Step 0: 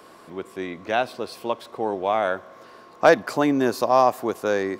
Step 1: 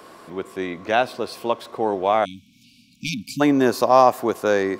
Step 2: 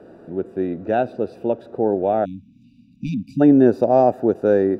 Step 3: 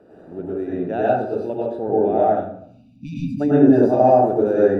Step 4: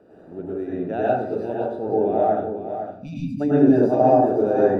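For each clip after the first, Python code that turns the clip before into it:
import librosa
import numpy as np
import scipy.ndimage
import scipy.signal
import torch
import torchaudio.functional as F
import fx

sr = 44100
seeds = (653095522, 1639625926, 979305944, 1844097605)

y1 = fx.spec_erase(x, sr, start_s=2.25, length_s=1.16, low_hz=280.0, high_hz=2200.0)
y1 = F.gain(torch.from_numpy(y1), 3.5).numpy()
y2 = np.convolve(y1, np.full(41, 1.0 / 41))[:len(y1)]
y2 = F.gain(torch.from_numpy(y2), 6.5).numpy()
y3 = fx.rev_plate(y2, sr, seeds[0], rt60_s=0.64, hf_ratio=0.5, predelay_ms=85, drr_db=-6.5)
y3 = F.gain(torch.from_numpy(y3), -7.0).numpy()
y4 = y3 + 10.0 ** (-9.5 / 20.0) * np.pad(y3, (int(508 * sr / 1000.0), 0))[:len(y3)]
y4 = F.gain(torch.from_numpy(y4), -2.5).numpy()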